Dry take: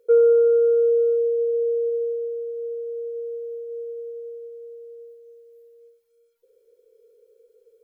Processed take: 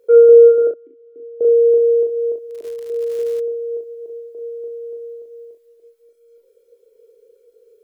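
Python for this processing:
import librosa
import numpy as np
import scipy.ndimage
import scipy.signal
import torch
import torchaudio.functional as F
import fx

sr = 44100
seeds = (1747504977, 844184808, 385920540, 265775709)

p1 = fx.reverse_delay(x, sr, ms=290, wet_db=-6.0)
p2 = fx.vowel_filter(p1, sr, vowel='i', at=(0.67, 1.41))
p3 = fx.dereverb_blind(p2, sr, rt60_s=0.58)
p4 = p3 + fx.room_early_taps(p3, sr, ms=(23, 38, 64), db=(-8.0, -3.5, -9.0), dry=0)
p5 = fx.dmg_crackle(p4, sr, seeds[0], per_s=fx.line((2.5, 95.0), (3.39, 430.0)), level_db=-34.0, at=(2.5, 3.39), fade=0.02)
y = F.gain(torch.from_numpy(p5), 4.0).numpy()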